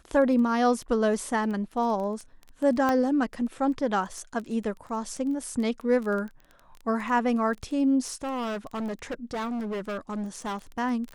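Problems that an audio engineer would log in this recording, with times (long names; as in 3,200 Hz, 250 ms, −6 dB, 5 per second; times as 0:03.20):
surface crackle 13 per second −32 dBFS
0:02.89: click −13 dBFS
0:08.00–0:10.57: clipping −28.5 dBFS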